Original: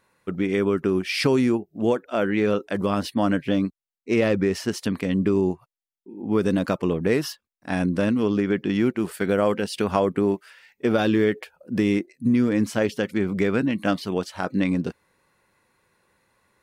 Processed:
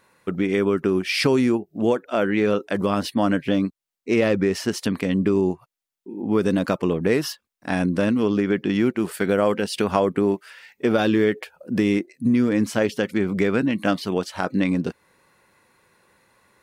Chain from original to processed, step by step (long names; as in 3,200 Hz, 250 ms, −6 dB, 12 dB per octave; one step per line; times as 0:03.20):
low-shelf EQ 80 Hz −6.5 dB
in parallel at +0.5 dB: downward compressor, threshold −33 dBFS, peak gain reduction 16 dB